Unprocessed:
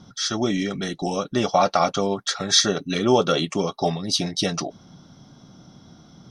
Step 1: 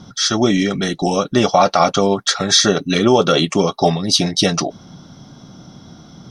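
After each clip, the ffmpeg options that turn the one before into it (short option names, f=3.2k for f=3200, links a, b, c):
-af "alimiter=level_in=9dB:limit=-1dB:release=50:level=0:latency=1,volume=-1dB"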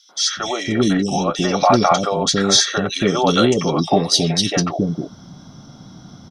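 -filter_complex "[0:a]acrossover=split=450|2600[a][b][c];[b]adelay=90[d];[a]adelay=370[e];[e][d][c]amix=inputs=3:normalize=0"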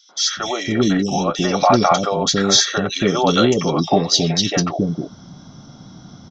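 -af "aresample=16000,aresample=44100"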